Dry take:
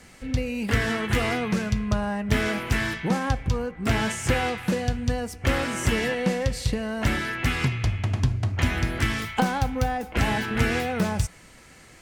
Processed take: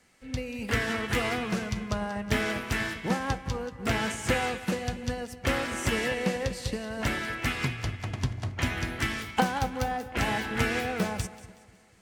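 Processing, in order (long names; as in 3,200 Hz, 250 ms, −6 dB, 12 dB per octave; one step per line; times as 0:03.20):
low-shelf EQ 170 Hz −7.5 dB
echo with a time of its own for lows and highs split 900 Hz, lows 244 ms, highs 186 ms, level −11 dB
expander for the loud parts 1.5 to 1, over −45 dBFS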